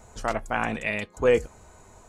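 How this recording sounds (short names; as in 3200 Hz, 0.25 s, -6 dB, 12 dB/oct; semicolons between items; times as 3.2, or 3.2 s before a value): noise floor -54 dBFS; spectral tilt -4.0 dB/oct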